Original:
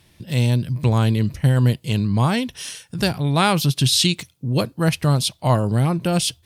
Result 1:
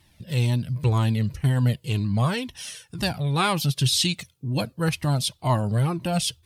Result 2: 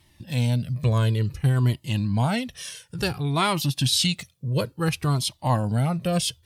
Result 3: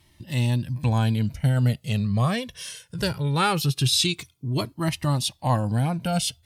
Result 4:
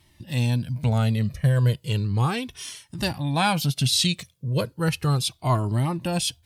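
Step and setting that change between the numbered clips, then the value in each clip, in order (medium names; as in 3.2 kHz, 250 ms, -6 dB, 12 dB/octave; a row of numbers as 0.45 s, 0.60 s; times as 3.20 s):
Shepard-style flanger, rate: 2 Hz, 0.57 Hz, 0.21 Hz, 0.35 Hz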